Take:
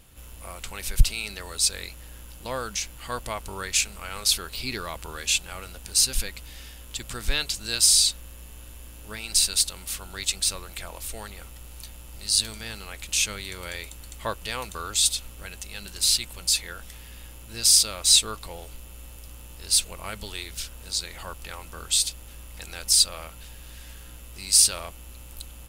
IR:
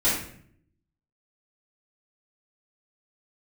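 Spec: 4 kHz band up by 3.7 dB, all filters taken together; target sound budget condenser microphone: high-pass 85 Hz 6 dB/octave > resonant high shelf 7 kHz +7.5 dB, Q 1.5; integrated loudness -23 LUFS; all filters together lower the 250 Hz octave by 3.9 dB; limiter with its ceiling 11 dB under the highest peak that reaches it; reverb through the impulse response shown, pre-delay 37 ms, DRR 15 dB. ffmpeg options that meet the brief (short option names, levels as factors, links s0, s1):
-filter_complex "[0:a]equalizer=f=250:t=o:g=-4.5,equalizer=f=4000:t=o:g=6.5,alimiter=limit=0.299:level=0:latency=1,asplit=2[s0][s1];[1:a]atrim=start_sample=2205,adelay=37[s2];[s1][s2]afir=irnorm=-1:irlink=0,volume=0.0376[s3];[s0][s3]amix=inputs=2:normalize=0,highpass=f=85:p=1,highshelf=f=7000:t=q:w=1.5:g=7.5,volume=0.794"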